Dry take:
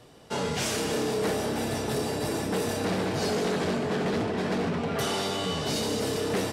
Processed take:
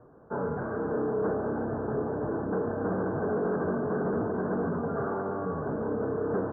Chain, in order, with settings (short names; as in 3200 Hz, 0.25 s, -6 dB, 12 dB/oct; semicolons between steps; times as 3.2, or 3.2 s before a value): rippled Chebyshev low-pass 1600 Hz, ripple 3 dB